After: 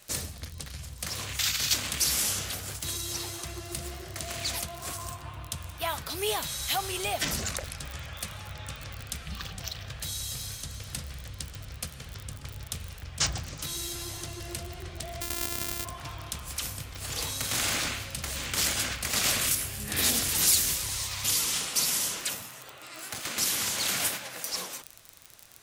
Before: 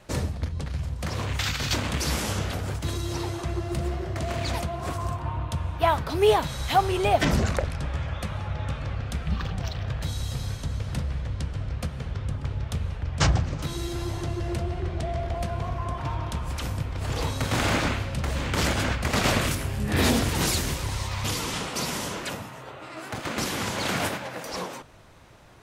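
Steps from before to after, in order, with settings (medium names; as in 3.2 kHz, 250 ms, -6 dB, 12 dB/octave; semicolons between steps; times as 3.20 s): 15.21–15.85 s: sorted samples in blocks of 128 samples; band-stop 930 Hz, Q 19; in parallel at -2 dB: peak limiter -18 dBFS, peak gain reduction 9.5 dB; on the sum: crackle 33 per s -30 dBFS; pre-emphasis filter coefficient 0.9; companded quantiser 8-bit; trim +3 dB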